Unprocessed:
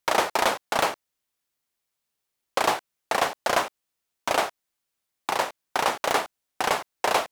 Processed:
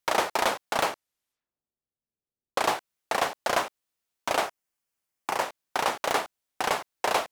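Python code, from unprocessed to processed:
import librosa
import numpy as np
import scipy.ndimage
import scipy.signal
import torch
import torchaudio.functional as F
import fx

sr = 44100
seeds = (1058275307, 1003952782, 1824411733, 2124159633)

y = fx.env_lowpass(x, sr, base_hz=390.0, full_db=-43.0, at=(0.92, 2.66), fade=0.02)
y = fx.peak_eq(y, sr, hz=3800.0, db=-6.5, octaves=0.39, at=(4.46, 5.42))
y = y * librosa.db_to_amplitude(-2.5)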